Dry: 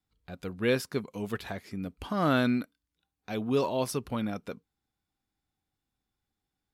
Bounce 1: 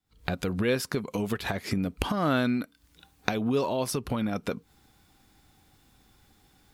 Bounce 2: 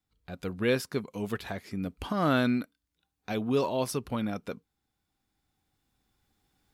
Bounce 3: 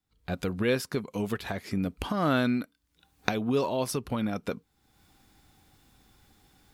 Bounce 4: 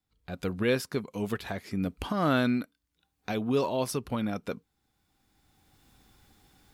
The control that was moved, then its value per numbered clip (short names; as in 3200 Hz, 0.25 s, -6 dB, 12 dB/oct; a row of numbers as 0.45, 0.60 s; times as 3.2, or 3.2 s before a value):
recorder AGC, rising by: 89, 5.2, 35, 14 dB/s